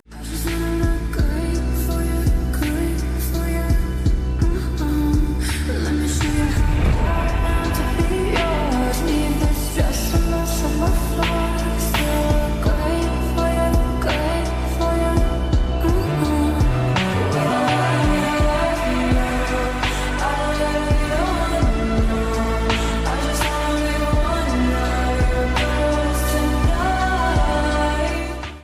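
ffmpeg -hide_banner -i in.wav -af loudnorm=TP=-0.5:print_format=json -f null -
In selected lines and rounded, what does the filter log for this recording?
"input_i" : "-20.4",
"input_tp" : "-6.3",
"input_lra" : "2.3",
"input_thresh" : "-30.4",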